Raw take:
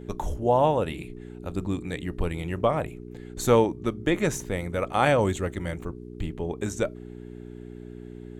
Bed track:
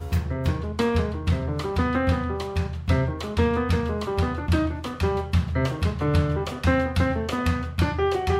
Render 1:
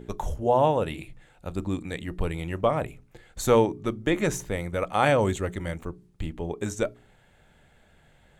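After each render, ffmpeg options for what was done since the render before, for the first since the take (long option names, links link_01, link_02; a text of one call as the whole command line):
ffmpeg -i in.wav -af "bandreject=frequency=60:width_type=h:width=4,bandreject=frequency=120:width_type=h:width=4,bandreject=frequency=180:width_type=h:width=4,bandreject=frequency=240:width_type=h:width=4,bandreject=frequency=300:width_type=h:width=4,bandreject=frequency=360:width_type=h:width=4,bandreject=frequency=420:width_type=h:width=4" out.wav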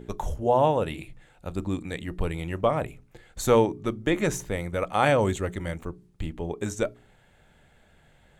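ffmpeg -i in.wav -af anull out.wav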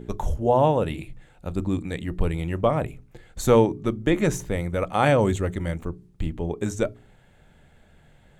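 ffmpeg -i in.wav -af "lowshelf=frequency=380:gain=6,bandreject=frequency=50:width_type=h:width=6,bandreject=frequency=100:width_type=h:width=6" out.wav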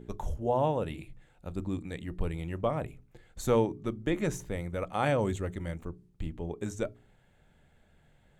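ffmpeg -i in.wav -af "volume=-8.5dB" out.wav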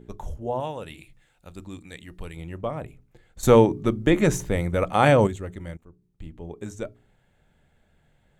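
ffmpeg -i in.wav -filter_complex "[0:a]asettb=1/sr,asplit=3[link_01][link_02][link_03];[link_01]atrim=end=0.604[link_04];[link_02]atrim=start=0.6:end=2.37,asetpts=PTS-STARTPTS,afade=type=in:duration=0.004:curve=qsin,afade=type=out:start_time=1.766:duration=0.004:curve=qsin,tiltshelf=frequency=1300:gain=-6[link_05];[link_03]atrim=start=2.366[link_06];[link_04][link_05]acrossfade=duration=0.004:curve1=hsin:curve2=qsin[link_07];[link_07][link_06]acrossfade=duration=0.004:curve1=qsin:curve2=hsin,asplit=4[link_08][link_09][link_10][link_11];[link_08]atrim=end=3.432[link_12];[link_09]atrim=start=3.428:end=5.272,asetpts=PTS-STARTPTS,volume=10.5dB[link_13];[link_10]atrim=start=5.268:end=5.77,asetpts=PTS-STARTPTS,afade=type=out:start_time=0.498:duration=0.004:curve=hsin:silence=0.158489[link_14];[link_11]atrim=start=5.77,asetpts=PTS-STARTPTS,afade=type=in:duration=0.81:silence=0.158489[link_15];[link_12][link_13]acrossfade=duration=0.004:curve1=hsin:curve2=hsin[link_16];[link_14][link_15]concat=n=2:v=0:a=1[link_17];[link_16][link_17]acrossfade=duration=0.004:curve1=hsin:curve2=hsin" out.wav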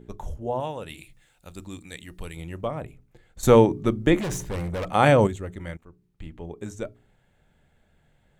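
ffmpeg -i in.wav -filter_complex "[0:a]asettb=1/sr,asplit=3[link_01][link_02][link_03];[link_01]atrim=end=0.894[link_04];[link_02]atrim=start=0.89:end=2.68,asetpts=PTS-STARTPTS,afade=type=in:duration=0.004:curve=qsin,afade=type=out:start_time=1.786:duration=0.004:curve=qsin,highshelf=frequency=3600:gain=7[link_05];[link_03]atrim=start=2.676[link_06];[link_04][link_05]acrossfade=duration=0.004:curve1=hsin:curve2=qsin[link_07];[link_07][link_06]acrossfade=duration=0.004:curve1=qsin:curve2=hsin,asettb=1/sr,asplit=3[link_08][link_09][link_10];[link_08]atrim=end=4.184[link_11];[link_09]atrim=start=4.18:end=4.88,asetpts=PTS-STARTPTS,afade=type=in:duration=0.004:curve=qsin,afade=type=out:start_time=0.696:duration=0.004:curve=qsin,volume=26.5dB,asoftclip=hard,volume=-26.5dB[link_12];[link_10]atrim=start=4.876[link_13];[link_11][link_12]acrossfade=duration=0.004:curve1=hsin:curve2=qsin[link_14];[link_14][link_13]acrossfade=duration=0.004:curve1=qsin:curve2=hsin,asettb=1/sr,asplit=3[link_15][link_16][link_17];[link_15]atrim=end=5.594[link_18];[link_16]atrim=start=5.59:end=6.46,asetpts=PTS-STARTPTS,afade=type=in:duration=0.004:curve=qsin,afade=type=out:start_time=0.866:duration=0.004:curve=qsin,equalizer=frequency=1800:width=0.5:gain=6[link_19];[link_17]atrim=start=6.456[link_20];[link_18][link_19]acrossfade=duration=0.004:curve1=hsin:curve2=qsin[link_21];[link_21][link_20]acrossfade=duration=0.004:curve1=qsin:curve2=hsin" out.wav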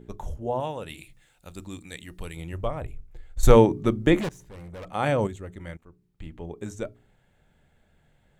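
ffmpeg -i in.wav -filter_complex "[0:a]asplit=3[link_01][link_02][link_03];[link_01]afade=type=out:start_time=2.52:duration=0.02[link_04];[link_02]asubboost=boost=11.5:cutoff=60,afade=type=in:start_time=2.52:duration=0.02,afade=type=out:start_time=3.55:duration=0.02[link_05];[link_03]afade=type=in:start_time=3.55:duration=0.02[link_06];[link_04][link_05][link_06]amix=inputs=3:normalize=0,asplit=2[link_07][link_08];[link_07]atrim=end=4.29,asetpts=PTS-STARTPTS,afade=type=out:start_time=4.286:duration=0.004:curve=hsin:silence=0.0944061[link_09];[link_08]atrim=start=4.29,asetpts=PTS-STARTPTS,afade=type=in:duration=2.11:silence=0.0944061[link_10];[link_09][link_10]concat=n=2:v=0:a=1" out.wav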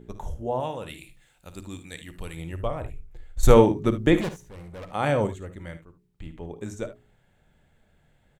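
ffmpeg -i in.wav -af "aecho=1:1:55|74:0.211|0.178" out.wav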